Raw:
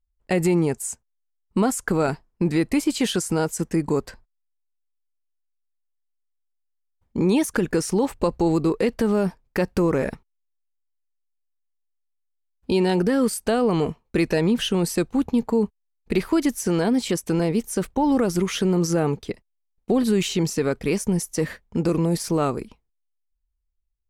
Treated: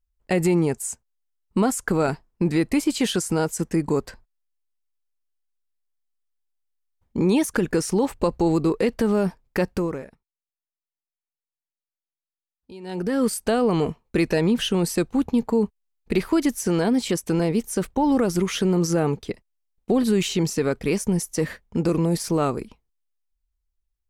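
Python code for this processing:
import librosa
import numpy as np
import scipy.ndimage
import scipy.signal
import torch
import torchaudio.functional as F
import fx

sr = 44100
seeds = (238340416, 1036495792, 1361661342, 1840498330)

y = fx.edit(x, sr, fx.fade_down_up(start_s=9.63, length_s=3.64, db=-20.5, fade_s=0.45), tone=tone)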